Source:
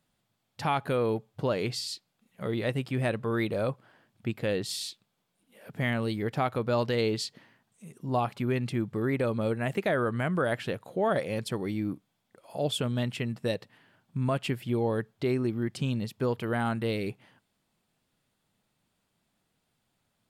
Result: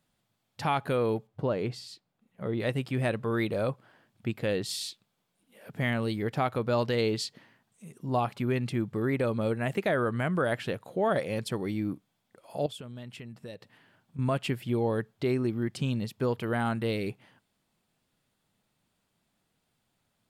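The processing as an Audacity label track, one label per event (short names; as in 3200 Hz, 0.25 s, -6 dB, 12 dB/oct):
1.270000	2.600000	high shelf 2200 Hz -12 dB
12.660000	14.190000	compressor 2.5:1, threshold -45 dBFS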